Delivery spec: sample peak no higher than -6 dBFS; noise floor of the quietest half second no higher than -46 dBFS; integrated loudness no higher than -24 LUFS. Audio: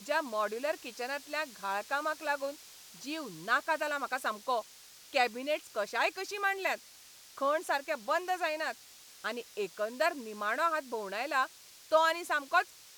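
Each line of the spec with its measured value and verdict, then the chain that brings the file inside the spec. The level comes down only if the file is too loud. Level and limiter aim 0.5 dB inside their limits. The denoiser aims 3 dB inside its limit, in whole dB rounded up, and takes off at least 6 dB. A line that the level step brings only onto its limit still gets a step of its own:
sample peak -14.0 dBFS: pass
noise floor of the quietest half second -55 dBFS: pass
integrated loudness -33.0 LUFS: pass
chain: none needed

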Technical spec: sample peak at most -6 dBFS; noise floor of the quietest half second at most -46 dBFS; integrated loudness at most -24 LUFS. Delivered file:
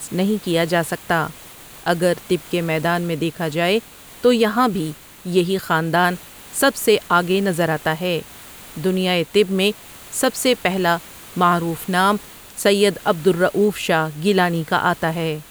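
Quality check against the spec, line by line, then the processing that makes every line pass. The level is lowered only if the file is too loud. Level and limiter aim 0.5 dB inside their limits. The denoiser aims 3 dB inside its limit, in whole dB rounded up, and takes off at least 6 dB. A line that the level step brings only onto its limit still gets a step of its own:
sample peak -4.0 dBFS: fail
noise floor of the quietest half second -41 dBFS: fail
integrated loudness -19.5 LUFS: fail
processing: noise reduction 6 dB, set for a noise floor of -41 dBFS; trim -5 dB

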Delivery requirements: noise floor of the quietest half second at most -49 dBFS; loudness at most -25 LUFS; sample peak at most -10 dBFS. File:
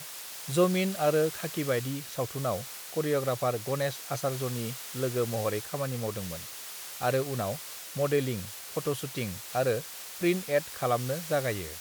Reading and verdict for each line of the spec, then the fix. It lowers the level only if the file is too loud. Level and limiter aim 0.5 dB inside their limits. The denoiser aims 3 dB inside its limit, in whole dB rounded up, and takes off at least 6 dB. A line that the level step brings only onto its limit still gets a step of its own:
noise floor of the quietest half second -42 dBFS: fail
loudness -30.5 LUFS: pass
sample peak -12.0 dBFS: pass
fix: noise reduction 10 dB, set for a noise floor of -42 dBFS

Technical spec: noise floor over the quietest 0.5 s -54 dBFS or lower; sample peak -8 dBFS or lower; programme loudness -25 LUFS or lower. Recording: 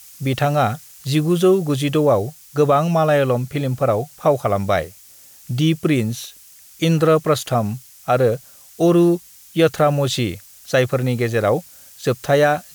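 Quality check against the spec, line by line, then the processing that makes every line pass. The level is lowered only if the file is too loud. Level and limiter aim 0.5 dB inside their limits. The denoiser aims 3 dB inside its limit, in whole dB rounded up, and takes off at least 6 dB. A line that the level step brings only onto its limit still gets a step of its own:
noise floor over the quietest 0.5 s -46 dBFS: fail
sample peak -5.5 dBFS: fail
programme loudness -19.0 LUFS: fail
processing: noise reduction 6 dB, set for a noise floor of -46 dBFS; trim -6.5 dB

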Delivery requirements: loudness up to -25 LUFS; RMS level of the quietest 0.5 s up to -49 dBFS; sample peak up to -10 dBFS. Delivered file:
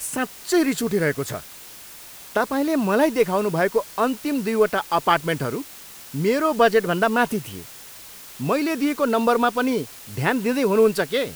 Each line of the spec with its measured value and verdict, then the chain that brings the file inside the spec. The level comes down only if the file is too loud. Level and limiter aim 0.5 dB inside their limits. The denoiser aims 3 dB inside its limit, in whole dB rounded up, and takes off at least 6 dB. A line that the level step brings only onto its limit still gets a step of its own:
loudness -21.5 LUFS: fail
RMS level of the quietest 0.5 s -42 dBFS: fail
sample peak -4.5 dBFS: fail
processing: noise reduction 6 dB, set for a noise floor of -42 dBFS; trim -4 dB; peak limiter -10.5 dBFS

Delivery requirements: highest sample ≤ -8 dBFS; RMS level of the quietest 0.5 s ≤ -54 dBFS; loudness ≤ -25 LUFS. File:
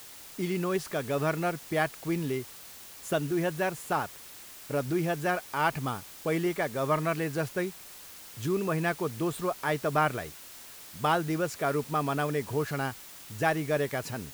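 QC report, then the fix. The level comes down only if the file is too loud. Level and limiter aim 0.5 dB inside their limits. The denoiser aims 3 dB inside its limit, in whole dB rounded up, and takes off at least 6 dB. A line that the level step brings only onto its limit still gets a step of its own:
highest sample -11.0 dBFS: pass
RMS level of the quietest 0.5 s -47 dBFS: fail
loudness -30.5 LUFS: pass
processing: noise reduction 10 dB, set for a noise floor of -47 dBFS

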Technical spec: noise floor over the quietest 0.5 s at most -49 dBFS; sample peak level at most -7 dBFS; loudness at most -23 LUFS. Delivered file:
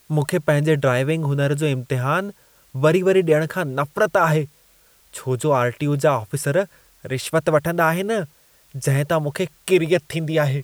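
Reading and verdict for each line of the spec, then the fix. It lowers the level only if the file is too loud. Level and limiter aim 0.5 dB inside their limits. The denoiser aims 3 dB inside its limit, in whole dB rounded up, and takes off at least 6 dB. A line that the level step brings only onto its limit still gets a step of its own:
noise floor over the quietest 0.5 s -55 dBFS: pass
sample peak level -5.5 dBFS: fail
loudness -20.5 LUFS: fail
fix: trim -3 dB

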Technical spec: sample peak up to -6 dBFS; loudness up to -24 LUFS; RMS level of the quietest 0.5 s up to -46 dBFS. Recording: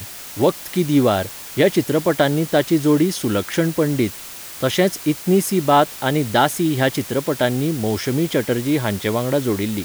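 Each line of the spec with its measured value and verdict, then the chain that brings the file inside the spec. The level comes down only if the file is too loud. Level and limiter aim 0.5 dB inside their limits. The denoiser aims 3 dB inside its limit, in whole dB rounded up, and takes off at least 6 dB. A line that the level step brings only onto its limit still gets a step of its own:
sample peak -4.0 dBFS: fail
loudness -19.0 LUFS: fail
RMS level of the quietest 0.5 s -35 dBFS: fail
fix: noise reduction 9 dB, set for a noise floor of -35 dBFS; trim -5.5 dB

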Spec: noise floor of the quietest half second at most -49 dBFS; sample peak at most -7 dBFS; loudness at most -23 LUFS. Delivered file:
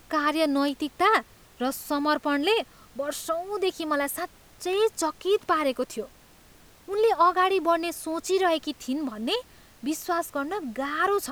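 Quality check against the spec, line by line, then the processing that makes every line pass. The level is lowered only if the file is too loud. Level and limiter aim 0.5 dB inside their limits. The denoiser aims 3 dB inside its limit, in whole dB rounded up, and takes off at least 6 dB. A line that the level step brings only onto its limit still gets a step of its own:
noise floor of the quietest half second -54 dBFS: pass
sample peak -9.5 dBFS: pass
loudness -26.5 LUFS: pass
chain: none needed

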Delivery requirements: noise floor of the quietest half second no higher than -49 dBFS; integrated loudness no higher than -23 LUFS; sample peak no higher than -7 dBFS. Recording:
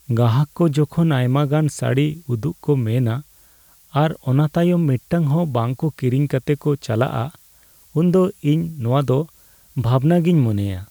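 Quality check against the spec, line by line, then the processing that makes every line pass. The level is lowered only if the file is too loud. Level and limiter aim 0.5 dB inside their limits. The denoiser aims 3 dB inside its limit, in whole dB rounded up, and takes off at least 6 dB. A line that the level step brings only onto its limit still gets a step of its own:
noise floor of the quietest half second -52 dBFS: pass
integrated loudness -19.5 LUFS: fail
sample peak -5.5 dBFS: fail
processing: trim -4 dB

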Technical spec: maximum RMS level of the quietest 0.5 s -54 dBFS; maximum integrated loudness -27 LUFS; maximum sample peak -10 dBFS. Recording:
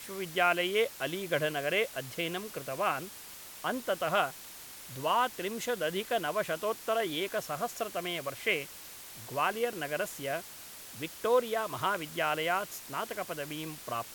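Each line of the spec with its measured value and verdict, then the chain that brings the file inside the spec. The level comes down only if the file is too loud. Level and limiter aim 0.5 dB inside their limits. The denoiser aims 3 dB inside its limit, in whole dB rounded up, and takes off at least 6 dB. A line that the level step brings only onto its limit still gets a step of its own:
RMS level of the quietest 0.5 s -48 dBFS: fail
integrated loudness -32.5 LUFS: pass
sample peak -12.5 dBFS: pass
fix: noise reduction 9 dB, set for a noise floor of -48 dBFS

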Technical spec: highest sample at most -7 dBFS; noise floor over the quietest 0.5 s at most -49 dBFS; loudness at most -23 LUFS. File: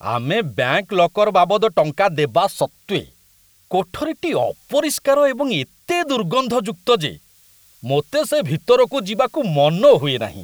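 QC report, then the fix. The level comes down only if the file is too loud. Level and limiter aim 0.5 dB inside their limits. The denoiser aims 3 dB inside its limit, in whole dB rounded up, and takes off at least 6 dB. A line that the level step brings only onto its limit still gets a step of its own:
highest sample -3.0 dBFS: fail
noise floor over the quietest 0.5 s -55 dBFS: pass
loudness -18.5 LUFS: fail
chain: trim -5 dB

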